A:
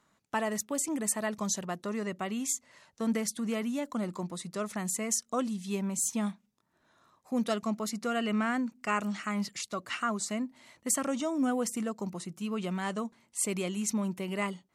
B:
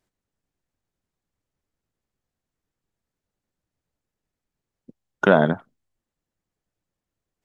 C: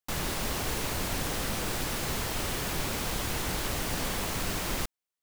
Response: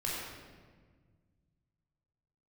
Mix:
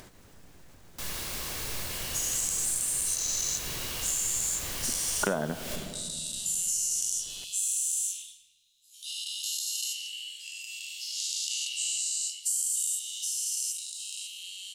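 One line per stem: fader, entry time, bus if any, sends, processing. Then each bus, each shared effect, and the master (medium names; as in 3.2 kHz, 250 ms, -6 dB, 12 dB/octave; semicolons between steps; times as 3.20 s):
-2.0 dB, 1.80 s, send -8.5 dB, every event in the spectrogram widened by 480 ms; Chebyshev high-pass 2.9 kHz, order 6
+0.5 dB, 0.00 s, send -20 dB, upward compressor, threshold -32 dBFS
-14.5 dB, 0.90 s, send -4 dB, treble shelf 2.2 kHz +11.5 dB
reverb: on, RT60 1.6 s, pre-delay 16 ms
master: compression 6:1, threshold -26 dBFS, peak gain reduction 16 dB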